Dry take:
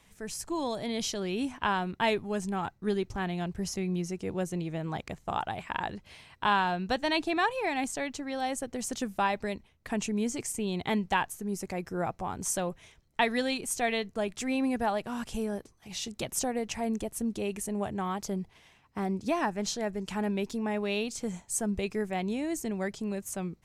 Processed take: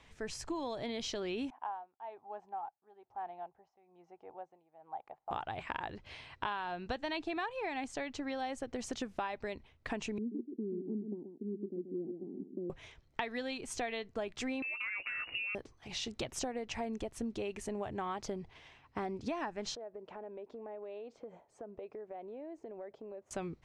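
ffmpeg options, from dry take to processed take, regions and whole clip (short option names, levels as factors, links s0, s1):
-filter_complex "[0:a]asettb=1/sr,asplit=3[s0][s1][s2];[s0]atrim=end=1.504[s3];[s1]atrim=start=1.5:end=5.31,asetpts=PTS-STARTPTS,afade=t=in:d=0.004:c=qsin,afade=t=out:st=3.806:d=0.004:c=qsin,bandpass=f=800:t=q:w=6.4,tremolo=f=1.1:d=0.84[s4];[s2]atrim=start=5.306[s5];[s3][s4]acrossfade=d=0.004:c1=hsin:c2=qsin[s6];[s6][s5]acrossfade=d=0.004:c1=qsin:c2=hsin,asettb=1/sr,asplit=3[s7][s8][s9];[s7]atrim=end=10.184[s10];[s8]atrim=start=10.18:end=12.7,asetpts=PTS-STARTPTS,afade=t=in:d=0.004:c=qsin,afade=t=out:st=2.516:d=0.004:c=qsin,asuperpass=centerf=270:order=8:qfactor=1.3,aecho=1:1:131:0.398,atrim=end_sample=111132[s11];[s9]atrim=start=12.696[s12];[s10][s11]acrossfade=d=0.004:c1=hsin:c2=qsin[s13];[s13][s12]acrossfade=d=0.004:c1=qsin:c2=hsin,asettb=1/sr,asplit=3[s14][s15][s16];[s14]atrim=end=14.624[s17];[s15]atrim=start=14.62:end=15.55,asetpts=PTS-STARTPTS,afade=t=in:d=0.004:c=qsin,afade=t=out:st=0.926:d=0.004:c=qsin,lowpass=f=2500:t=q:w=0.5098,lowpass=f=2500:t=q:w=0.6013,lowpass=f=2500:t=q:w=0.9,lowpass=f=2500:t=q:w=2.563,afreqshift=-2900,acompressor=threshold=0.0224:ratio=4:attack=3.2:release=140:knee=1:detection=peak,asplit=2[s18][s19];[s19]adelay=16,volume=0.251[s20];[s18][s20]amix=inputs=2:normalize=0,atrim=end_sample=41013[s21];[s16]atrim=start=15.546[s22];[s17][s21]acrossfade=d=0.004:c1=hsin:c2=qsin[s23];[s23][s22]acrossfade=d=0.004:c1=qsin:c2=hsin,asettb=1/sr,asplit=3[s24][s25][s26];[s24]atrim=end=19.754[s27];[s25]atrim=start=19.75:end=23.31,asetpts=PTS-STARTPTS,afade=t=in:d=0.004:c=qsin,afade=t=out:st=3.556:d=0.004:c=qsin,bandpass=f=560:t=q:w=2.1,acompressor=threshold=0.00708:ratio=10:attack=3.2:release=140:knee=1:detection=peak[s28];[s26]atrim=start=23.306[s29];[s27][s28]acrossfade=d=0.004:c1=hsin:c2=qsin[s30];[s30][s29]acrossfade=d=0.004:c1=qsin:c2=hsin,lowpass=4500,equalizer=f=190:w=3.8:g=-9.5,acompressor=threshold=0.0141:ratio=6,volume=1.26"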